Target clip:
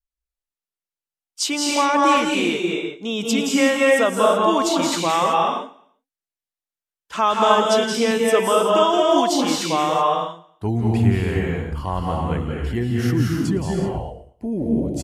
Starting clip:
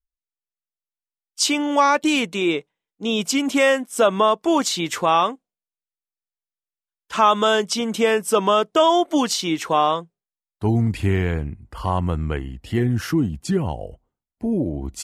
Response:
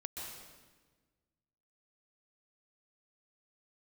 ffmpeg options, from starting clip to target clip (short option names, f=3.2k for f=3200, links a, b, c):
-filter_complex "[0:a]aecho=1:1:114|228|342:0.0944|0.0368|0.0144[a];[1:a]atrim=start_sample=2205,afade=t=out:st=0.33:d=0.01,atrim=end_sample=14994,asetrate=31752,aresample=44100[b];[a][b]afir=irnorm=-1:irlink=0"